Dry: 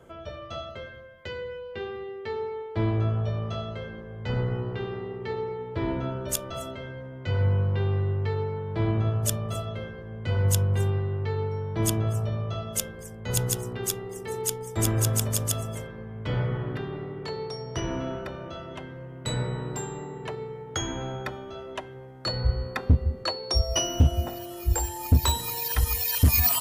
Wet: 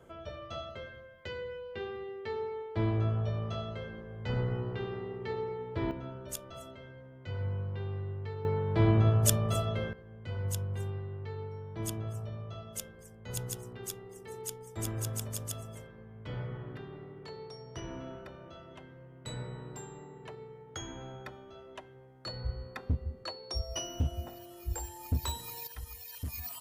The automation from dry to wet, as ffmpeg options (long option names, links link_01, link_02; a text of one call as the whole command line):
ffmpeg -i in.wav -af "asetnsamples=nb_out_samples=441:pad=0,asendcmd='5.91 volume volume -11.5dB;8.45 volume volume 1dB;9.93 volume volume -11.5dB;25.67 volume volume -19.5dB',volume=-4.5dB" out.wav